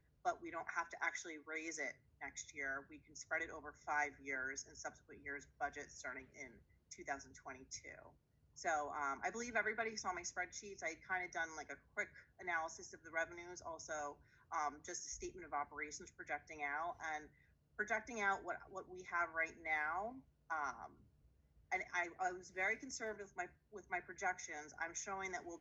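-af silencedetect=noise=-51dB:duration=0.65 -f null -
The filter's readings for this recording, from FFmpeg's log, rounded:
silence_start: 20.86
silence_end: 21.72 | silence_duration: 0.85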